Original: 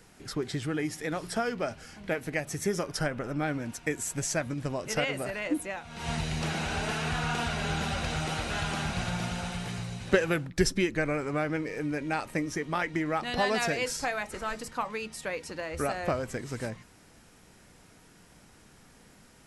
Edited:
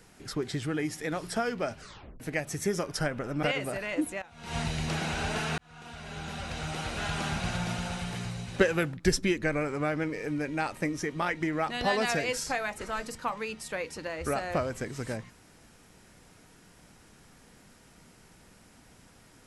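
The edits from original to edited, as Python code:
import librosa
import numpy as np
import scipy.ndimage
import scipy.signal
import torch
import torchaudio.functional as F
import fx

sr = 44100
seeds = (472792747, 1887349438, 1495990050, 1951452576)

y = fx.edit(x, sr, fx.tape_stop(start_s=1.8, length_s=0.4),
    fx.cut(start_s=3.43, length_s=1.53),
    fx.fade_in_from(start_s=5.75, length_s=0.32, floor_db=-16.0),
    fx.fade_in_span(start_s=7.11, length_s=1.67), tone=tone)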